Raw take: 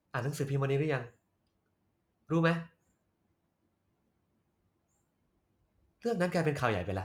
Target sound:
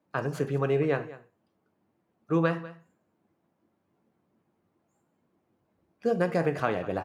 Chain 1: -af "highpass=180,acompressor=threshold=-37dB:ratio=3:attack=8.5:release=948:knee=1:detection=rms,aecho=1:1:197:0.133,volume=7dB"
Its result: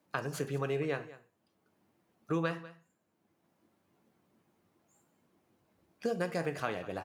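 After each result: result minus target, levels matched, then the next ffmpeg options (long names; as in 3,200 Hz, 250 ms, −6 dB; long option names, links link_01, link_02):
downward compressor: peak gain reduction +9 dB; 4,000 Hz band +6.5 dB
-af "highpass=180,acompressor=threshold=-25dB:ratio=3:attack=8.5:release=948:knee=1:detection=rms,aecho=1:1:197:0.133,volume=7dB"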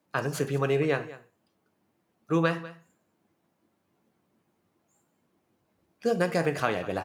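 4,000 Hz band +6.5 dB
-af "highpass=180,highshelf=frequency=2600:gain=-11.5,acompressor=threshold=-25dB:ratio=3:attack=8.5:release=948:knee=1:detection=rms,aecho=1:1:197:0.133,volume=7dB"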